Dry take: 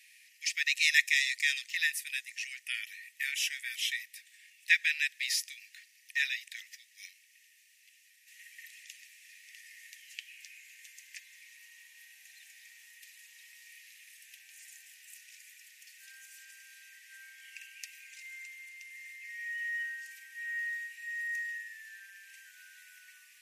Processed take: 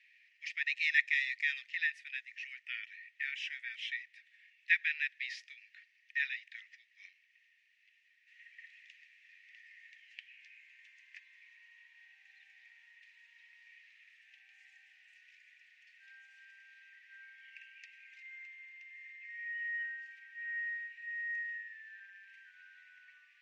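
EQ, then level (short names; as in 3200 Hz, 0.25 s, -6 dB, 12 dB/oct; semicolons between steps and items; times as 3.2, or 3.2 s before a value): LPF 2200 Hz 12 dB/oct; air absorption 63 m; 0.0 dB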